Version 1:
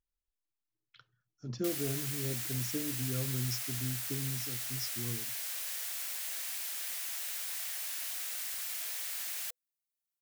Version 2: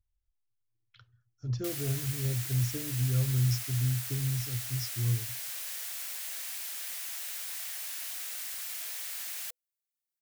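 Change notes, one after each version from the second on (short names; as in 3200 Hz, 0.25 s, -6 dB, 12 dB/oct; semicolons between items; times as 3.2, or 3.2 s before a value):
master: add resonant low shelf 140 Hz +11 dB, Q 3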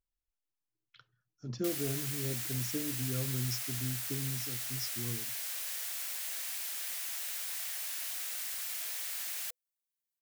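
master: add resonant low shelf 140 Hz -11 dB, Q 3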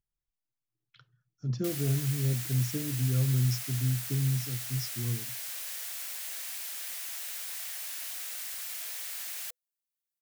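master: add bell 140 Hz +11.5 dB 0.77 oct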